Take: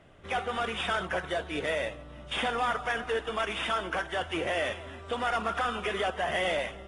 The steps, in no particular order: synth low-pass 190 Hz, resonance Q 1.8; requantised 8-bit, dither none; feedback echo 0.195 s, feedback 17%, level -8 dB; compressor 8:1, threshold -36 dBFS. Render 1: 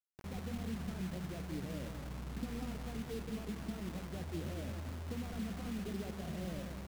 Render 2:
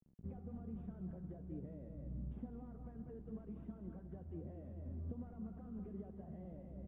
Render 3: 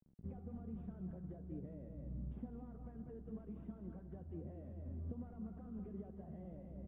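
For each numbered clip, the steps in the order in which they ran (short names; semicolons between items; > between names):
synth low-pass > compressor > feedback echo > requantised; feedback echo > compressor > requantised > synth low-pass; feedback echo > requantised > compressor > synth low-pass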